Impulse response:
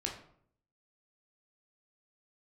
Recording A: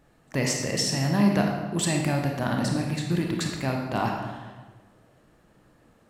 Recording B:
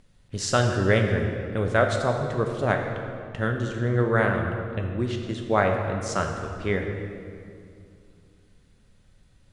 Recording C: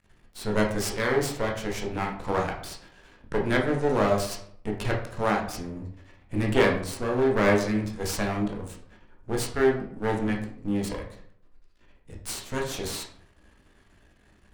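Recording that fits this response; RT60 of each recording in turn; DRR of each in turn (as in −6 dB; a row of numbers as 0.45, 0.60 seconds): C; 1.4, 2.5, 0.60 seconds; 1.0, 2.5, −0.5 decibels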